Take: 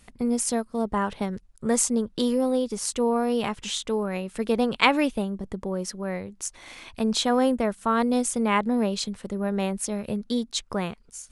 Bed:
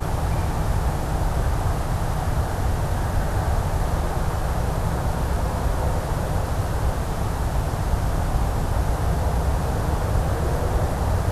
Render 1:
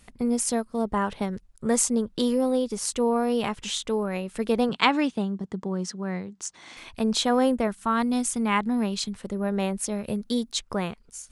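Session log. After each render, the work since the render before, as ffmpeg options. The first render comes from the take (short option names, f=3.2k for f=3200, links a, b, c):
-filter_complex "[0:a]asettb=1/sr,asplit=3[a][b][c];[a]atrim=end=4.694[d];[b]atrim=start=4.69:end=6.77,asetpts=PTS-STARTPTS,afade=t=in:d=0.004:c=qsin,afade=t=out:st=2.076:d=0.004:c=qsin,highpass=140,equalizer=f=170:t=q:w=4:g=6,equalizer=f=550:t=q:w=4:g=-7,equalizer=f=2.4k:t=q:w=4:g=-4,lowpass=f=8.1k:w=0.5412,lowpass=f=8.1k:w=1.3066[e];[c]atrim=start=6.766[f];[d][e]acrossfade=d=0.004:c1=hsin:c2=qsin[g];[g][f]acrossfade=d=0.004:c1=qsin:c2=hsin,asettb=1/sr,asplit=3[h][i][j];[h]atrim=end=7.674[k];[i]atrim=start=7.67:end=9.16,asetpts=PTS-STARTPTS,afade=t=in:d=0.004:c=qsin,afade=t=out:st=1.486:d=0.004:c=qsin,equalizer=f=530:t=o:w=0.52:g=-11.5[l];[j]atrim=start=9.156[m];[k][l]acrossfade=d=0.004:c1=hsin:c2=qsin[n];[n][m]acrossfade=d=0.004:c1=qsin:c2=hsin,asettb=1/sr,asplit=3[o][p][q];[o]atrim=end=10.084[r];[p]atrim=start=10.08:end=10.53,asetpts=PTS-STARTPTS,afade=t=in:d=0.004:c=qsin,afade=t=out:st=0.446:d=0.004:c=qsin,highshelf=f=8.8k:g=9.5[s];[q]atrim=start=10.526[t];[r][s]acrossfade=d=0.004:c1=hsin:c2=qsin[u];[u][t]acrossfade=d=0.004:c1=qsin:c2=hsin"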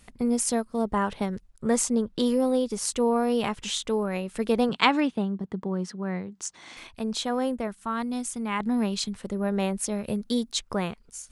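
-filter_complex "[0:a]asettb=1/sr,asplit=3[a][b][c];[a]atrim=end=1.504[d];[b]atrim=start=1.5:end=2.26,asetpts=PTS-STARTPTS,afade=t=in:d=0.004:c=qsin,afade=t=out:st=0.756:d=0.004:c=qsin,highshelf=f=6.3k:g=-5.5[e];[c]atrim=start=2.256[f];[d][e]acrossfade=d=0.004:c1=hsin:c2=qsin[g];[g][f]acrossfade=d=0.004:c1=qsin:c2=hsin,asettb=1/sr,asplit=3[h][i][j];[h]atrim=end=5.004[k];[i]atrim=start=5:end=6.34,asetpts=PTS-STARTPTS,afade=t=in:d=0.004:c=qsin,afade=t=out:st=1.336:d=0.004:c=qsin,equalizer=f=6.8k:w=0.95:g=-9[l];[j]atrim=start=6.336[m];[k][l]acrossfade=d=0.004:c1=hsin:c2=qsin[n];[n][m]acrossfade=d=0.004:c1=qsin:c2=hsin,asplit=3[o][p][q];[o]atrim=end=6.872[r];[p]atrim=start=6.868:end=8.602,asetpts=PTS-STARTPTS,volume=-5.5dB[s];[q]atrim=start=8.598[t];[r][s]acrossfade=d=0.004:c1=hsin:c2=hsin[u];[u][t]acrossfade=d=0.004:c1=hsin:c2=hsin"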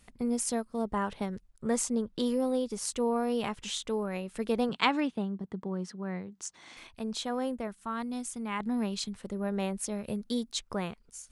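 -af "volume=-5.5dB"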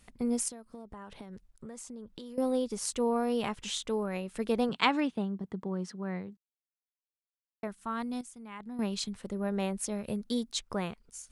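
-filter_complex "[0:a]asettb=1/sr,asplit=3[a][b][c];[a]atrim=end=0.484[d];[b]atrim=start=0.48:end=2.38,asetpts=PTS-STARTPTS,afade=t=in:d=0.004:c=qsin,afade=t=out:st=1.896:d=0.004:c=qsin,acompressor=threshold=-41dB:ratio=12:attack=3.2:release=140:knee=1:detection=peak[e];[c]atrim=start=2.376[f];[d][e]acrossfade=d=0.004:c1=hsin:c2=qsin[g];[g][f]acrossfade=d=0.004:c1=qsin:c2=hsin,asplit=5[h][i][j][k][l];[h]atrim=end=6.37,asetpts=PTS-STARTPTS,afade=t=out:st=6.366:d=0.004:c=hsin[m];[i]atrim=start=6.37:end=7.63,asetpts=PTS-STARTPTS,volume=0[n];[j]atrim=start=7.63:end=8.212,asetpts=PTS-STARTPTS,afade=t=in:d=0.004:c=hsin[o];[k]atrim=start=8.208:end=8.792,asetpts=PTS-STARTPTS,volume=-10.5dB[p];[l]atrim=start=8.788[q];[m][n][o]concat=n=3:v=0:a=1[r];[r][p]acrossfade=d=0.004:c1=hsin:c2=hsin[s];[s][q]acrossfade=d=0.004:c1=hsin:c2=hsin"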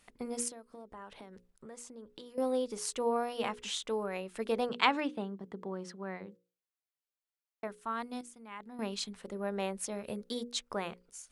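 -af "bass=f=250:g=-10,treble=f=4k:g=-3,bandreject=f=60:t=h:w=6,bandreject=f=120:t=h:w=6,bandreject=f=180:t=h:w=6,bandreject=f=240:t=h:w=6,bandreject=f=300:t=h:w=6,bandreject=f=360:t=h:w=6,bandreject=f=420:t=h:w=6,bandreject=f=480:t=h:w=6,bandreject=f=540:t=h:w=6"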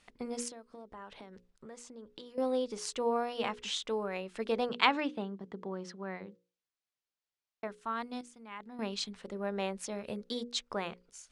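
-af "lowpass=5.3k,highshelf=f=4.1k:g=6"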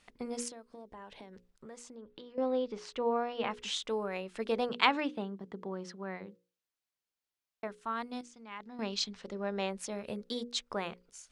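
-filter_complex "[0:a]asettb=1/sr,asplit=3[a][b][c];[a]atrim=end=0.674[d];[b]atrim=start=0.67:end=1.33,asetpts=PTS-STARTPTS,afade=t=in:d=0.004:c=qsin,afade=t=out:st=0.656:d=0.004:c=qsin,equalizer=f=1.3k:w=5.2:g=-10[e];[c]atrim=start=1.326[f];[d][e]acrossfade=d=0.004:c1=hsin:c2=qsin[g];[g][f]acrossfade=d=0.004:c1=qsin:c2=hsin,asettb=1/sr,asplit=3[h][i][j];[h]atrim=end=1.964[k];[i]atrim=start=1.96:end=3.51,asetpts=PTS-STARTPTS,afade=t=in:d=0.004:c=qsin,afade=t=out:st=1.546:d=0.004:c=qsin,lowpass=3.3k[l];[j]atrim=start=3.506[m];[k][l]acrossfade=d=0.004:c1=hsin:c2=qsin[n];[n][m]acrossfade=d=0.004:c1=qsin:c2=hsin,asettb=1/sr,asplit=3[o][p][q];[o]atrim=end=8.254[r];[p]atrim=start=8.25:end=9.7,asetpts=PTS-STARTPTS,afade=t=in:d=0.004:c=qsin,afade=t=out:st=1.446:d=0.004:c=qsin,lowpass=f=5.9k:t=q:w=1.7[s];[q]atrim=start=9.696[t];[r][s]acrossfade=d=0.004:c1=hsin:c2=qsin[u];[u][t]acrossfade=d=0.004:c1=qsin:c2=hsin"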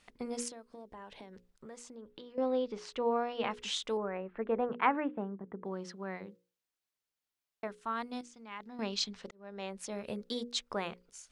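-filter_complex "[0:a]asettb=1/sr,asplit=3[a][b][c];[a]atrim=end=3.974[d];[b]atrim=start=3.97:end=5.65,asetpts=PTS-STARTPTS,afade=t=in:d=0.004:c=qsin,afade=t=out:st=1.676:d=0.004:c=qsin,lowpass=f=1.9k:w=0.5412,lowpass=f=1.9k:w=1.3066[e];[c]atrim=start=5.646[f];[d][e]acrossfade=d=0.004:c1=hsin:c2=qsin[g];[g][f]acrossfade=d=0.004:c1=qsin:c2=hsin,asplit=2[h][i];[h]atrim=end=9.31,asetpts=PTS-STARTPTS,afade=t=out:st=9.306:d=0.004:c=hsin[j];[i]atrim=start=9.31,asetpts=PTS-STARTPTS,afade=t=in:d=0.7[k];[j][k]concat=n=2:v=0:a=1"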